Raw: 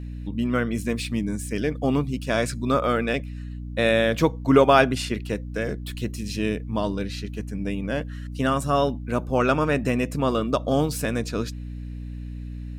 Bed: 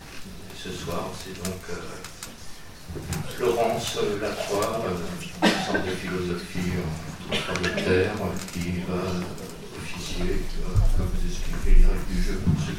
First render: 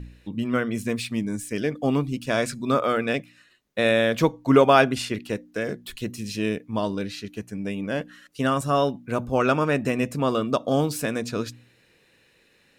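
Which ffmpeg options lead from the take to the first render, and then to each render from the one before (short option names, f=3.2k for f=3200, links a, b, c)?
-af "bandreject=f=60:t=h:w=4,bandreject=f=120:t=h:w=4,bandreject=f=180:t=h:w=4,bandreject=f=240:t=h:w=4,bandreject=f=300:t=h:w=4"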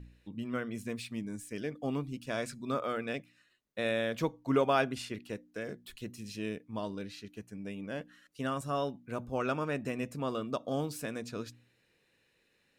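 -af "volume=-11.5dB"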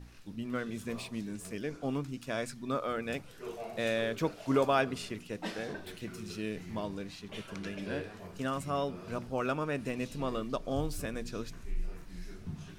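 -filter_complex "[1:a]volume=-19dB[a];[0:a][a]amix=inputs=2:normalize=0"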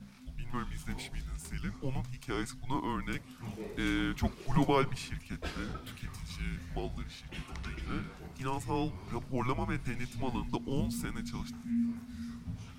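-af "afreqshift=-260"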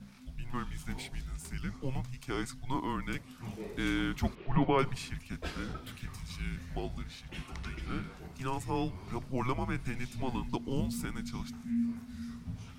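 -filter_complex "[0:a]asettb=1/sr,asplit=3[a][b][c];[a]atrim=end=4.354[d];[b]atrim=start=4.35:end=4.79,asetpts=PTS-STARTPTS,afade=t=in:d=0.004:c=qsin,afade=t=out:st=0.436:d=0.004:c=qsin,lowpass=f=3.1k:w=0.5412,lowpass=f=3.1k:w=1.3066[e];[c]atrim=start=4.786[f];[d][e]acrossfade=d=0.004:c1=hsin:c2=qsin[g];[g][f]acrossfade=d=0.004:c1=qsin:c2=hsin"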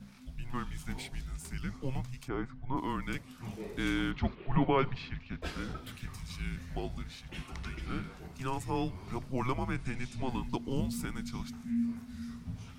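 -filter_complex "[0:a]asplit=3[a][b][c];[a]afade=t=out:st=2.27:d=0.02[d];[b]lowpass=1.5k,afade=t=in:st=2.27:d=0.02,afade=t=out:st=2.76:d=0.02[e];[c]afade=t=in:st=2.76:d=0.02[f];[d][e][f]amix=inputs=3:normalize=0,asettb=1/sr,asplit=3[g][h][i];[g]atrim=end=4.114[j];[h]atrim=start=4.11:end=5.42,asetpts=PTS-STARTPTS,afade=t=in:d=0.004:c=qsin,afade=t=out:st=1.306:d=0.004:c=qsin,lowpass=f=4.1k:w=0.5412,lowpass=f=4.1k:w=1.3066[k];[i]atrim=start=5.416[l];[j][k]acrossfade=d=0.004:c1=hsin:c2=qsin[m];[m][l]acrossfade=d=0.004:c1=qsin:c2=hsin,asettb=1/sr,asplit=3[n][o][p];[n]atrim=end=9.744[q];[o]atrim=start=9.74:end=10.3,asetpts=PTS-STARTPTS,afade=t=in:d=0.004:c=qsin,afade=t=out:st=0.556:d=0.004:c=qsin,lowpass=f=9.8k:w=0.5412,lowpass=f=9.8k:w=1.3066[r];[p]atrim=start=10.296[s];[q][r]acrossfade=d=0.004:c1=hsin:c2=qsin[t];[t][s]acrossfade=d=0.004:c1=qsin:c2=hsin"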